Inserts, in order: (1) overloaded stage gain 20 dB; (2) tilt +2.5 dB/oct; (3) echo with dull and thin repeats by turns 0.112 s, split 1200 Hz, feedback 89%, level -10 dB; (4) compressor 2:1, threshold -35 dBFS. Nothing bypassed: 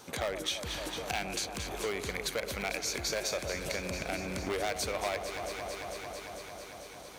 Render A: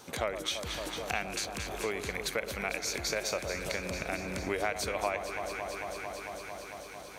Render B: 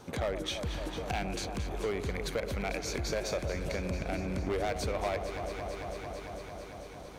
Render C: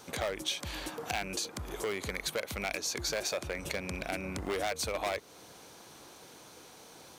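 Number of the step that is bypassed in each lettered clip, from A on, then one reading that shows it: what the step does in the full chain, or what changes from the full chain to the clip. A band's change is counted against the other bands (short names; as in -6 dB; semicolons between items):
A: 1, distortion -10 dB; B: 2, 125 Hz band +8.5 dB; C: 3, momentary loudness spread change +9 LU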